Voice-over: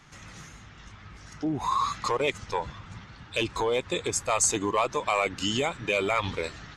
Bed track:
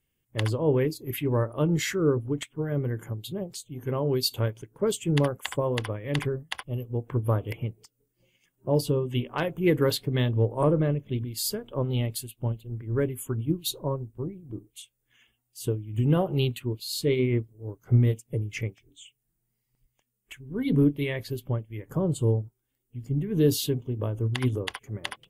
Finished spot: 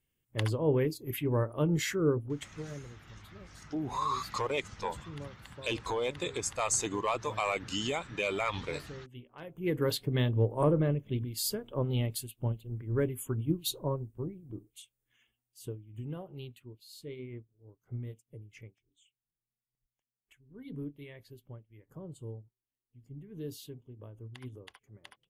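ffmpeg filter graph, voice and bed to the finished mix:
ffmpeg -i stem1.wav -i stem2.wav -filter_complex "[0:a]adelay=2300,volume=-6dB[link_01];[1:a]volume=13dB,afade=type=out:start_time=2.07:duration=0.81:silence=0.149624,afade=type=in:start_time=9.39:duration=0.67:silence=0.141254,afade=type=out:start_time=14.03:duration=2.17:silence=0.16788[link_02];[link_01][link_02]amix=inputs=2:normalize=0" out.wav

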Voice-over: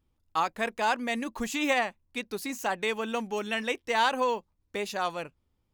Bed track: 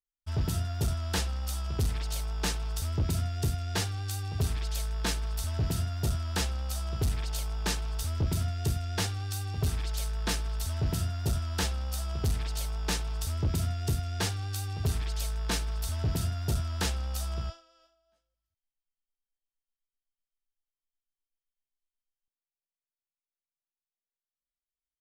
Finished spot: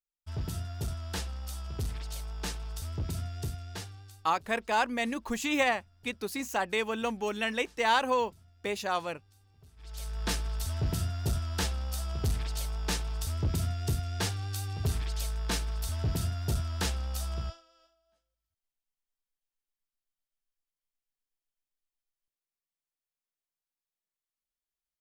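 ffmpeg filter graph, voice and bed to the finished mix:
ffmpeg -i stem1.wav -i stem2.wav -filter_complex "[0:a]adelay=3900,volume=-0.5dB[link_01];[1:a]volume=22.5dB,afade=type=out:start_time=3.37:duration=0.92:silence=0.0668344,afade=type=in:start_time=9.76:duration=0.52:silence=0.0398107[link_02];[link_01][link_02]amix=inputs=2:normalize=0" out.wav

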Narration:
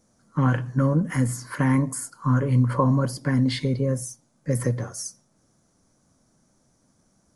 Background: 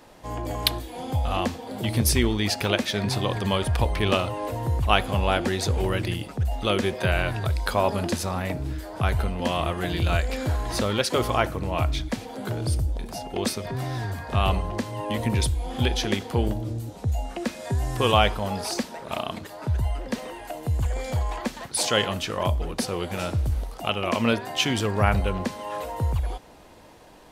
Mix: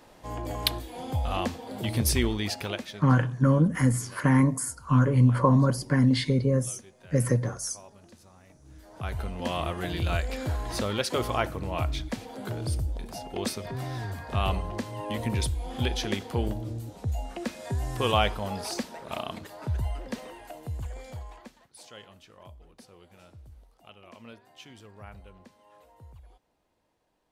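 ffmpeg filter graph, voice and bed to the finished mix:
ffmpeg -i stem1.wav -i stem2.wav -filter_complex "[0:a]adelay=2650,volume=0dB[link_01];[1:a]volume=19.5dB,afade=type=out:start_time=2.24:duration=0.9:silence=0.0630957,afade=type=in:start_time=8.62:duration=0.93:silence=0.0707946,afade=type=out:start_time=19.81:duration=1.86:silence=0.0944061[link_02];[link_01][link_02]amix=inputs=2:normalize=0" out.wav

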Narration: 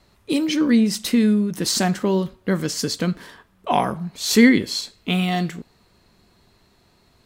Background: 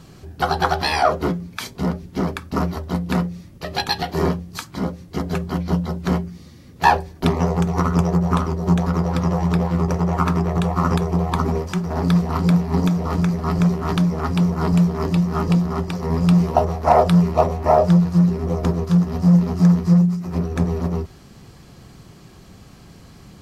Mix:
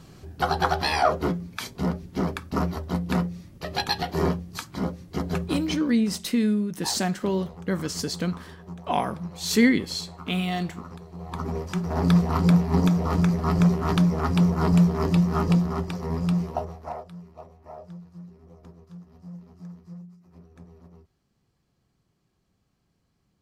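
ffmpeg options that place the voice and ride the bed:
ffmpeg -i stem1.wav -i stem2.wav -filter_complex "[0:a]adelay=5200,volume=-5.5dB[link_01];[1:a]volume=16.5dB,afade=type=out:start_time=5.43:duration=0.4:silence=0.11885,afade=type=in:start_time=11.14:duration=0.92:silence=0.0944061,afade=type=out:start_time=15.3:duration=1.74:silence=0.0501187[link_02];[link_01][link_02]amix=inputs=2:normalize=0" out.wav

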